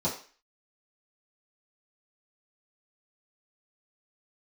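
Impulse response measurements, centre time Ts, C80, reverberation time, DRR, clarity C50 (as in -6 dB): 25 ms, 13.0 dB, 0.40 s, -10.0 dB, 8.5 dB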